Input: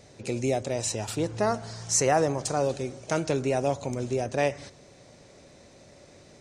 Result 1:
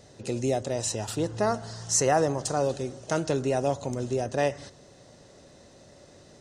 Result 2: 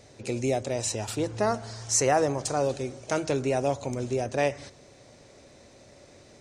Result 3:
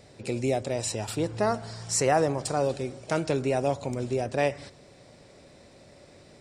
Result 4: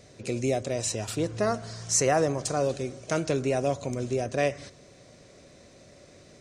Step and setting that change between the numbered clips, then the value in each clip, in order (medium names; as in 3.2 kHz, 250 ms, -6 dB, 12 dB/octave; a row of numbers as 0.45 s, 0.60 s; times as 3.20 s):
band-stop, frequency: 2.3 kHz, 170 Hz, 6.3 kHz, 860 Hz